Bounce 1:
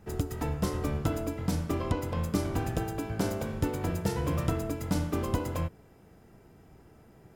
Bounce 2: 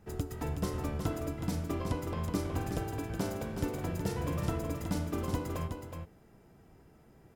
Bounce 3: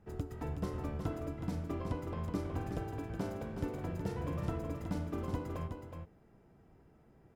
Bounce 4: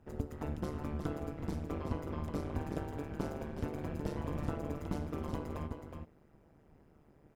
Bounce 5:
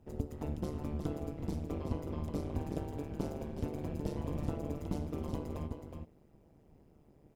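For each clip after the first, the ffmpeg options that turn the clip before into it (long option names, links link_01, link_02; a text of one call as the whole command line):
ffmpeg -i in.wav -af "aecho=1:1:370:0.473,volume=-4.5dB" out.wav
ffmpeg -i in.wav -af "highshelf=frequency=3700:gain=-11.5,volume=-3.5dB" out.wav
ffmpeg -i in.wav -af "tremolo=f=150:d=1,volume=4dB" out.wav
ffmpeg -i in.wav -af "equalizer=frequency=1500:width=1.2:gain=-9.5,volume=1dB" out.wav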